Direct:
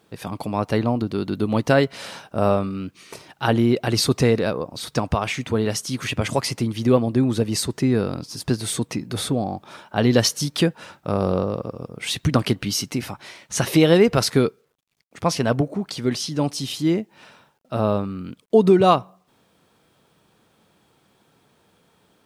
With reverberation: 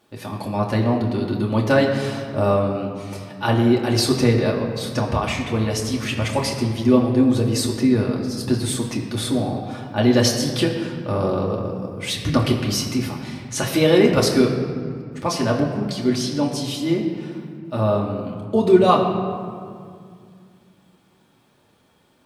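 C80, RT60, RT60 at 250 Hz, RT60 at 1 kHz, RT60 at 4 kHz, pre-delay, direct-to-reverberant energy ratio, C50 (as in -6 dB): 6.5 dB, 2.2 s, 3.0 s, 2.1 s, 1.2 s, 3 ms, -2.0 dB, 5.5 dB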